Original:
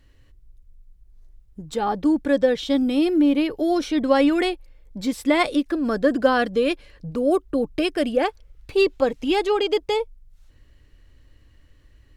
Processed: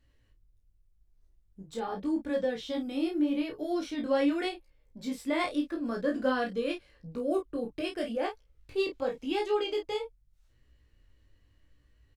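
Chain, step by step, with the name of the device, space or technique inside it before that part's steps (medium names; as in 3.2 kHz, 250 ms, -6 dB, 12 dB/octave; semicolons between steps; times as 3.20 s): double-tracked vocal (doubling 31 ms -6 dB; chorus 0.84 Hz, delay 16.5 ms, depth 5.3 ms); trim -8.5 dB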